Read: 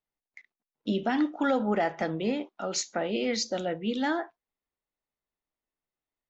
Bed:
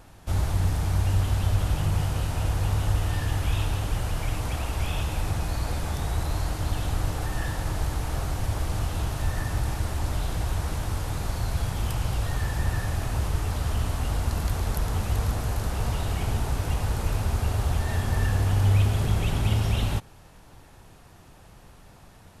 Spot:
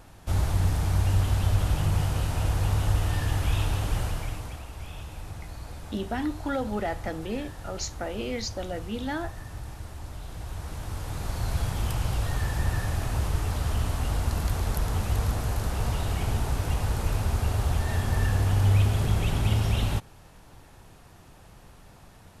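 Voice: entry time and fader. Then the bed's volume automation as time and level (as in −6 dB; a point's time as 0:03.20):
5.05 s, −3.5 dB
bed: 0:04.02 0 dB
0:04.66 −11.5 dB
0:10.20 −11.5 dB
0:11.52 −0.5 dB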